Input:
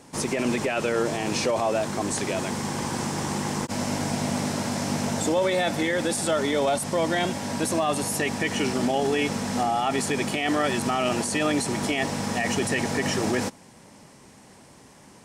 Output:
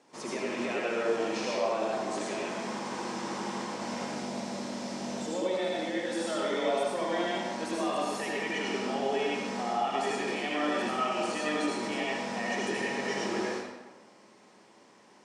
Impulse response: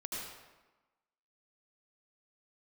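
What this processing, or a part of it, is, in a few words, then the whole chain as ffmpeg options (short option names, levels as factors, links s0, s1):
supermarket ceiling speaker: -filter_complex "[0:a]asettb=1/sr,asplit=3[s0][s1][s2];[s0]atrim=end=4.064[s3];[s1]atrim=start=4.06:end=6.07,asetpts=PTS-STARTPTS,afade=t=in:d=0.004:c=qsin,afade=t=out:st=2.006:d=0.004:c=qsin,equalizer=f=1400:w=0.57:g=-5.5[s4];[s2]atrim=start=6.066[s5];[s3][s4]acrossfade=d=0.004:c1=hsin:c2=qsin[s6];[s6][s5]acrossfade=d=0.004:c1=qsin:c2=hsin,highpass=290,lowpass=5700[s7];[1:a]atrim=start_sample=2205[s8];[s7][s8]afir=irnorm=-1:irlink=0,volume=0.501"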